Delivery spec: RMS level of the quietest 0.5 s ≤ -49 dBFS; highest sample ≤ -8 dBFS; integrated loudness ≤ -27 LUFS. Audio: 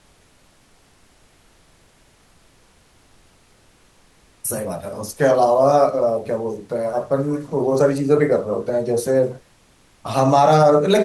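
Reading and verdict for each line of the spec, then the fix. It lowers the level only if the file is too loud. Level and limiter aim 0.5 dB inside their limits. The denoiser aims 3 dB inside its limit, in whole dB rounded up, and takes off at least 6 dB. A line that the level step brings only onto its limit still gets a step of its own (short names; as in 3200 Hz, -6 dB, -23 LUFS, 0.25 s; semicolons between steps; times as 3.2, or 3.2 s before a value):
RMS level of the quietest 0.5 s -55 dBFS: OK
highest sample -5.0 dBFS: fail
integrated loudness -18.5 LUFS: fail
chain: gain -9 dB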